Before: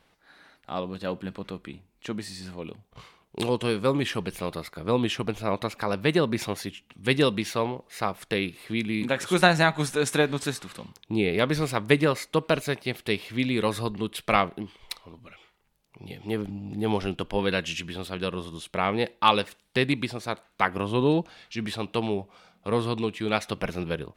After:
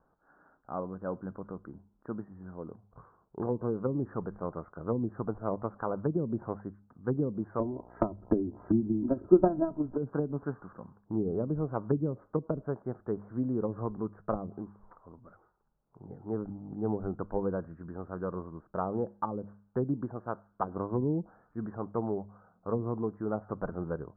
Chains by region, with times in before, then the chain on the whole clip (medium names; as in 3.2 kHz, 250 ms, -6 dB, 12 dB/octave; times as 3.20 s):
7.59–9.96 s: comb 3.1 ms, depth 91% + transient shaper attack +12 dB, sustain +4 dB + mains buzz 60 Hz, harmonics 17, -51 dBFS -1 dB/octave
whole clip: steep low-pass 1.5 kHz 72 dB/octave; low-pass that closes with the level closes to 320 Hz, closed at -19.5 dBFS; de-hum 101.5 Hz, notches 2; trim -4.5 dB